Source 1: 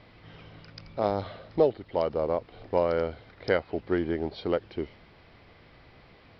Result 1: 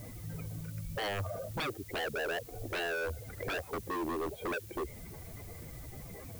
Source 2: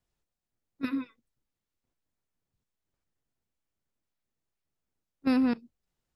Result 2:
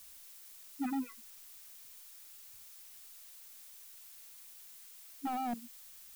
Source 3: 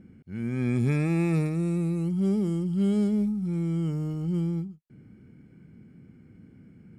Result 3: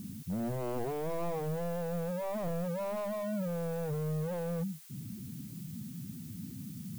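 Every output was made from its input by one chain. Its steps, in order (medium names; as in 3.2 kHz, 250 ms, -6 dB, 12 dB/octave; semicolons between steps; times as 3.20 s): spectral contrast enhancement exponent 2.2; Chebyshev low-pass 2.4 kHz, order 4; dynamic bell 270 Hz, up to -4 dB, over -40 dBFS, Q 1.2; compression 1.5:1, threshold -45 dBFS; wavefolder -38.5 dBFS; added noise blue -63 dBFS; trim +9 dB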